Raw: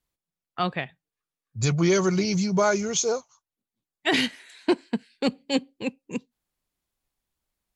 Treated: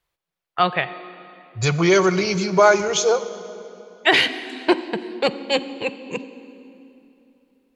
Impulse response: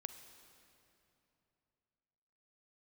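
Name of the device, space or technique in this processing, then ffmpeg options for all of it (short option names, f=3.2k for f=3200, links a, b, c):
filtered reverb send: -filter_complex "[0:a]asplit=2[a][b];[b]highpass=f=250:w=0.5412,highpass=f=250:w=1.3066,lowpass=4.3k[c];[1:a]atrim=start_sample=2205[d];[c][d]afir=irnorm=-1:irlink=0,volume=6dB[e];[a][e]amix=inputs=2:normalize=0,volume=2dB"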